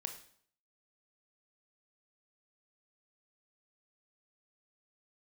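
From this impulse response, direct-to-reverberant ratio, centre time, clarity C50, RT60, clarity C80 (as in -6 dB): 5.0 dB, 14 ms, 9.5 dB, 0.60 s, 13.0 dB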